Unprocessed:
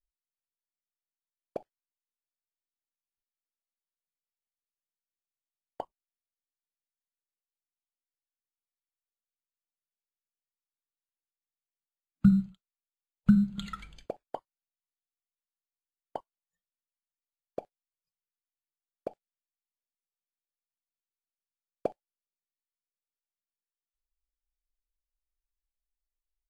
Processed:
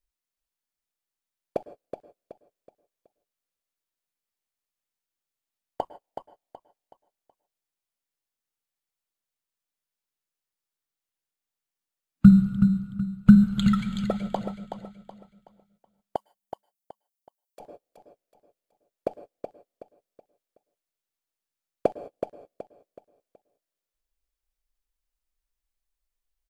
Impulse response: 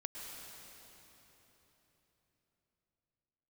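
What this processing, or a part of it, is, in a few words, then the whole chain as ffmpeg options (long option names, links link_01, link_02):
keyed gated reverb: -filter_complex "[0:a]asplit=3[link_01][link_02][link_03];[1:a]atrim=start_sample=2205[link_04];[link_02][link_04]afir=irnorm=-1:irlink=0[link_05];[link_03]apad=whole_len=1168471[link_06];[link_05][link_06]sidechaingate=range=-41dB:threshold=-55dB:ratio=16:detection=peak,volume=-3dB[link_07];[link_01][link_07]amix=inputs=2:normalize=0,asettb=1/sr,asplit=3[link_08][link_09][link_10];[link_08]atrim=end=16.164[link_11];[link_09]atrim=start=16.16:end=17.6,asetpts=PTS-STARTPTS,afade=type=in:duration=0.004:curve=qsin,afade=type=out:start_time=1.436:duration=0.004:curve=qsin,aderivative[link_12];[link_10]atrim=start=17.596[link_13];[link_11][link_12]acrossfade=duration=0.004:curve1=hsin:curve2=qsin[link_14];[link_14][link_13]acrossfade=duration=0.004:curve1=qsin:curve2=hsin,aecho=1:1:374|748|1122|1496:0.398|0.139|0.0488|0.0171,volume=5dB"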